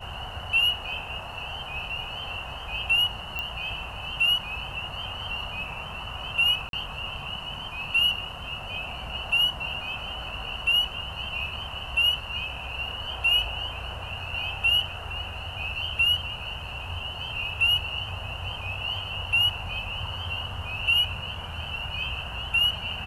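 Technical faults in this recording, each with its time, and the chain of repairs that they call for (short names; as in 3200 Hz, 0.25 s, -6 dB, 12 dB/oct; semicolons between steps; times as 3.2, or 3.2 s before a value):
3.39 pop -17 dBFS
6.69–6.73 gap 42 ms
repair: de-click; interpolate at 6.69, 42 ms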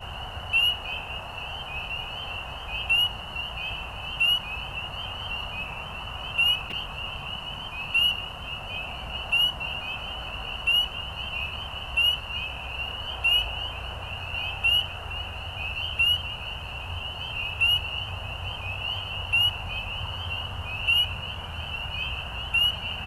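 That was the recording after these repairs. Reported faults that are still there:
none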